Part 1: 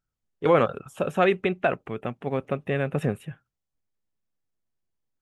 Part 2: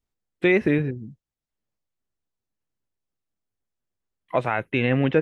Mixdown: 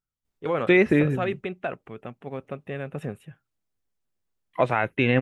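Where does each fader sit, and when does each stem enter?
-7.0 dB, +1.0 dB; 0.00 s, 0.25 s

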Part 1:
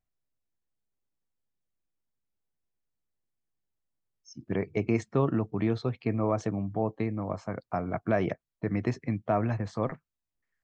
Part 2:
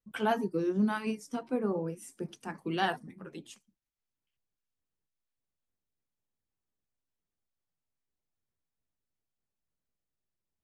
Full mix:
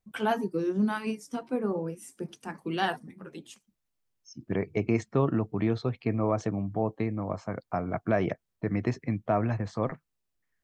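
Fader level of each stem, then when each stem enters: +0.5 dB, +1.5 dB; 0.00 s, 0.00 s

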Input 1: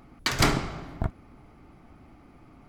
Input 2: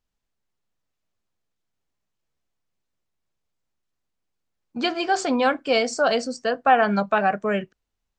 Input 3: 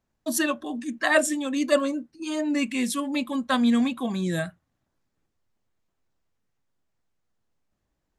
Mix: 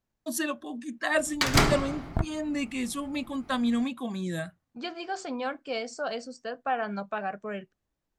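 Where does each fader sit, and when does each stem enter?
+1.0 dB, -12.0 dB, -5.5 dB; 1.15 s, 0.00 s, 0.00 s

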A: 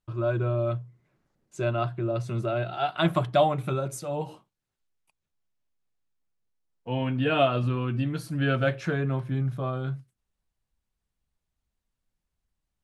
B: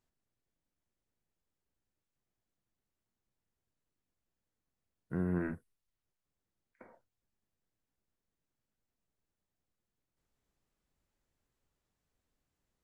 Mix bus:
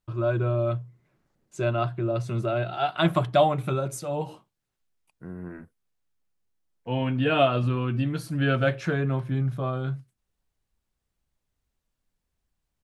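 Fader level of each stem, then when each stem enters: +1.5 dB, -5.0 dB; 0.00 s, 0.10 s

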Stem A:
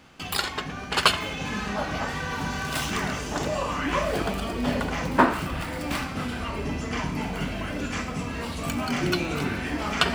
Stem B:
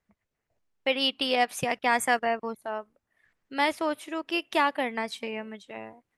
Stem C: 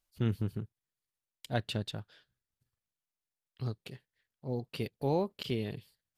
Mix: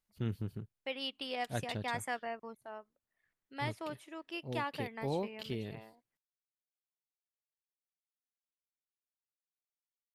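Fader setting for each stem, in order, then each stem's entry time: mute, -13.5 dB, -5.5 dB; mute, 0.00 s, 0.00 s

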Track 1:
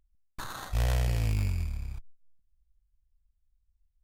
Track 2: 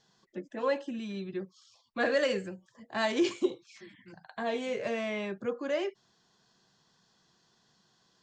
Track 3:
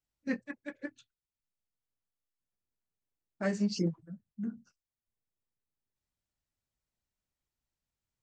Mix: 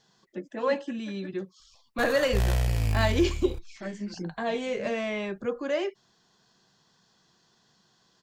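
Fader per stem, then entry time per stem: +2.0 dB, +3.0 dB, -5.0 dB; 1.60 s, 0.00 s, 0.40 s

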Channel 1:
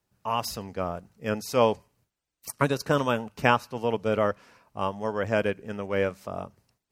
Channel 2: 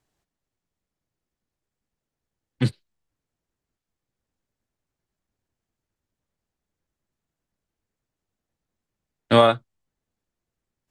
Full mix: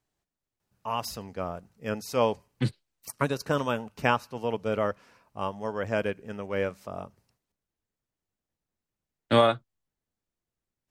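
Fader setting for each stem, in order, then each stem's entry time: -3.0 dB, -5.0 dB; 0.60 s, 0.00 s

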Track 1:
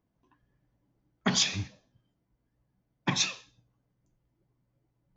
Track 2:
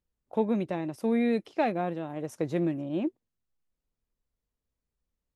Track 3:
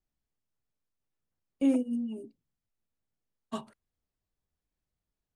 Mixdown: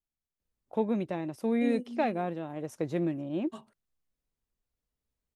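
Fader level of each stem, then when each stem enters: mute, -2.0 dB, -9.0 dB; mute, 0.40 s, 0.00 s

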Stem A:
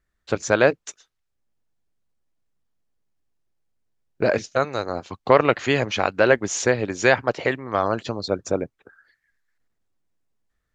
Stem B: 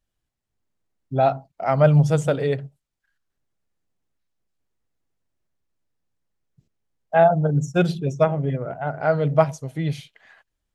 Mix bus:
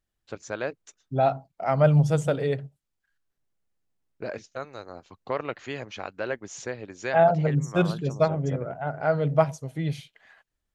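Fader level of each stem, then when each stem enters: -14.0 dB, -3.5 dB; 0.00 s, 0.00 s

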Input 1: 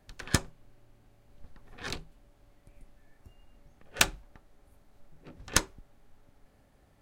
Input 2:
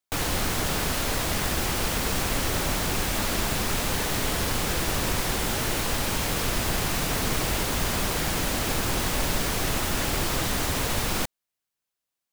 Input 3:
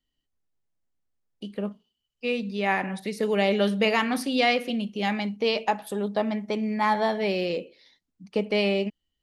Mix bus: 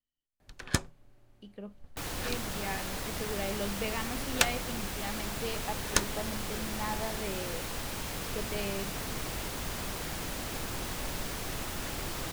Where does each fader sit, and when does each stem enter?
-2.0 dB, -10.5 dB, -13.5 dB; 0.40 s, 1.85 s, 0.00 s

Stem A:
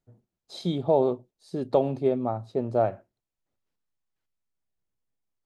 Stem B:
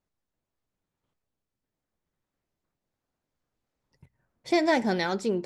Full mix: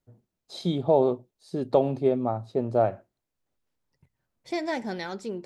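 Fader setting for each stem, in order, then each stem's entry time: +1.0 dB, -6.5 dB; 0.00 s, 0.00 s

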